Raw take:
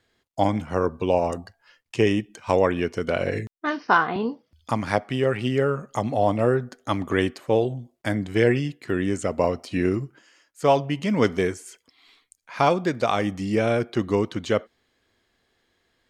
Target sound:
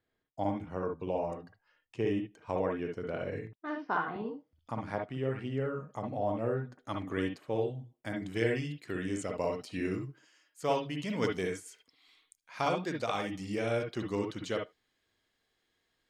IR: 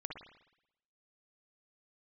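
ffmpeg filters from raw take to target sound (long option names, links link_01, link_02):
-filter_complex "[0:a]asetnsamples=nb_out_samples=441:pad=0,asendcmd='6.78 highshelf g -2;8.16 highshelf g 6.5',highshelf=frequency=2600:gain=-10[link_01];[1:a]atrim=start_sample=2205,atrim=end_sample=3528[link_02];[link_01][link_02]afir=irnorm=-1:irlink=0,volume=-8.5dB"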